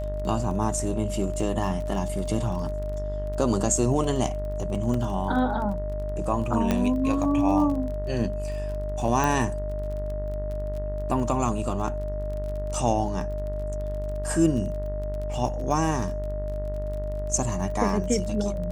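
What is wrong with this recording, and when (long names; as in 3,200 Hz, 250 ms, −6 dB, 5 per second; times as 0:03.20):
mains buzz 50 Hz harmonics 40 −31 dBFS
surface crackle 26 per second −33 dBFS
whistle 610 Hz −32 dBFS
0:04.94: drop-out 3.2 ms
0:06.71: click −10 dBFS
0:09.24: click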